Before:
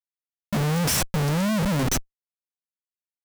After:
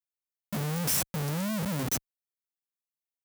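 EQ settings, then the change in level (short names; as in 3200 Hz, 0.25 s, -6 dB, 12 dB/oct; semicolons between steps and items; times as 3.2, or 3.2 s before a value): HPF 110 Hz 12 dB/oct; low shelf 140 Hz +4 dB; high shelf 9300 Hz +11.5 dB; -9.0 dB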